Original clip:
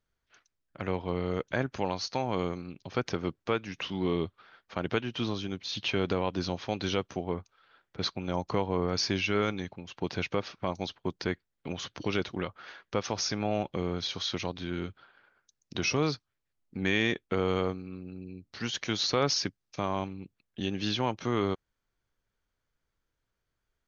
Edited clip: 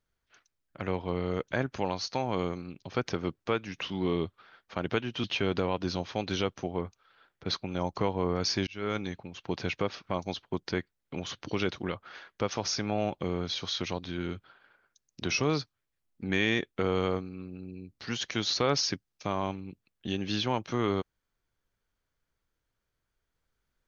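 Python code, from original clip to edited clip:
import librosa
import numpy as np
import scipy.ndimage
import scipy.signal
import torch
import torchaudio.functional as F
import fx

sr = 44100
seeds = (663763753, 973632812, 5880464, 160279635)

y = fx.edit(x, sr, fx.cut(start_s=5.24, length_s=0.53),
    fx.fade_in_span(start_s=9.2, length_s=0.34), tone=tone)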